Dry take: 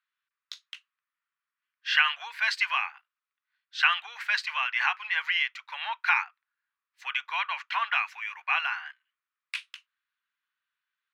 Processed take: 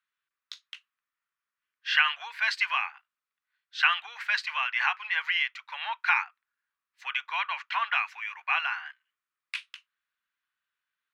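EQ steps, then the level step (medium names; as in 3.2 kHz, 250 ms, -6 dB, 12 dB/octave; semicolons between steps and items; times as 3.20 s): treble shelf 7 kHz -5 dB; 0.0 dB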